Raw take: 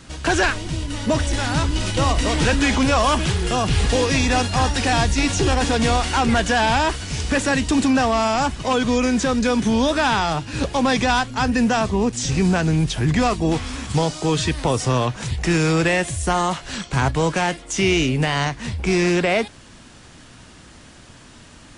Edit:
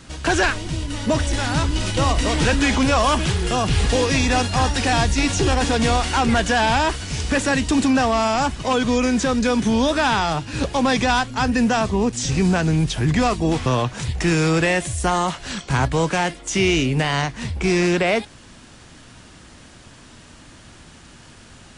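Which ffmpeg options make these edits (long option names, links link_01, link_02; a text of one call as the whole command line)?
ffmpeg -i in.wav -filter_complex "[0:a]asplit=2[link_01][link_02];[link_01]atrim=end=13.662[link_03];[link_02]atrim=start=14.888[link_04];[link_03][link_04]acrossfade=duration=0.004:curve1=hsin:curve2=hsin" out.wav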